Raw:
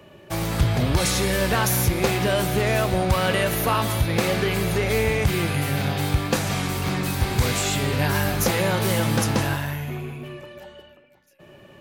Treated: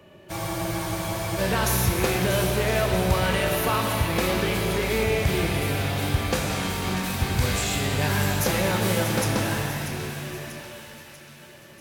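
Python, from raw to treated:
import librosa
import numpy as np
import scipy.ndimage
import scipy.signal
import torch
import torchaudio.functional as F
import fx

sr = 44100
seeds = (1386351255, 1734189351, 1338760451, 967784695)

y = fx.echo_split(x, sr, split_hz=1400.0, low_ms=111, high_ms=640, feedback_pct=52, wet_db=-9.5)
y = fx.spec_freeze(y, sr, seeds[0], at_s=0.32, hold_s=1.07)
y = fx.rev_shimmer(y, sr, seeds[1], rt60_s=3.2, semitones=7, shimmer_db=-8, drr_db=4.0)
y = F.gain(torch.from_numpy(y), -3.5).numpy()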